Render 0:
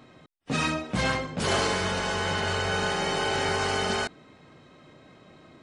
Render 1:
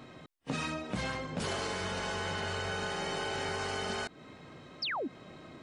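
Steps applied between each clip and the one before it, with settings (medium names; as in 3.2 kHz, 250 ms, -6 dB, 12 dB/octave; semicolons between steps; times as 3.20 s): pre-echo 30 ms -21.5 dB; painted sound fall, 4.82–5.08 s, 220–5700 Hz -32 dBFS; compression 6:1, threshold -35 dBFS, peak gain reduction 13.5 dB; trim +2 dB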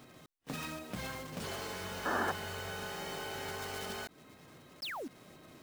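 block-companded coder 3-bit; painted sound noise, 2.05–2.32 s, 210–1800 Hz -27 dBFS; trim -6 dB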